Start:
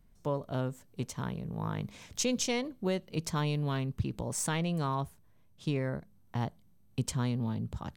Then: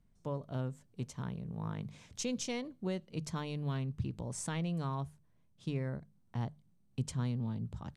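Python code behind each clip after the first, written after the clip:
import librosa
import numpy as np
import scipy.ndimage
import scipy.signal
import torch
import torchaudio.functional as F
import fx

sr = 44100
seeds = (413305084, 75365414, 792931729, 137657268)

y = scipy.signal.sosfilt(scipy.signal.butter(4, 11000.0, 'lowpass', fs=sr, output='sos'), x)
y = fx.peak_eq(y, sr, hz=130.0, db=5.5, octaves=1.8)
y = fx.hum_notches(y, sr, base_hz=50, count=3)
y = y * 10.0 ** (-7.5 / 20.0)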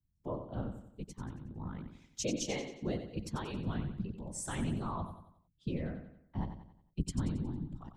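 y = fx.bin_expand(x, sr, power=1.5)
y = fx.whisperise(y, sr, seeds[0])
y = fx.echo_feedback(y, sr, ms=91, feedback_pct=43, wet_db=-9.0)
y = y * 10.0 ** (2.0 / 20.0)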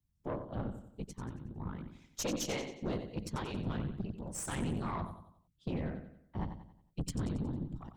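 y = fx.tube_stage(x, sr, drive_db=34.0, bias=0.7)
y = y * 10.0 ** (4.5 / 20.0)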